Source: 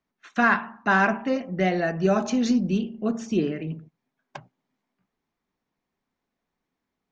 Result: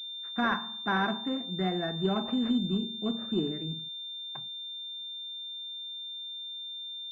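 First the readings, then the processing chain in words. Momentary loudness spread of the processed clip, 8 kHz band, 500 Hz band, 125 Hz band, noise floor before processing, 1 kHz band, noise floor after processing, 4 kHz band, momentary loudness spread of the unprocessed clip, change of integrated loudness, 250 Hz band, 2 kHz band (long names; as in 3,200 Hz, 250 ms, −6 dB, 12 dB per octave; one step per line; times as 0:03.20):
8 LU, can't be measured, −9.0 dB, −5.5 dB, −84 dBFS, −7.5 dB, −40 dBFS, +10.5 dB, 9 LU, −8.5 dB, −6.0 dB, −10.5 dB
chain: in parallel at −8 dB: soft clipping −17.5 dBFS, distortion −13 dB
on the sum: parametric band 560 Hz −12.5 dB 0.27 octaves
switching amplifier with a slow clock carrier 3,600 Hz
level −8 dB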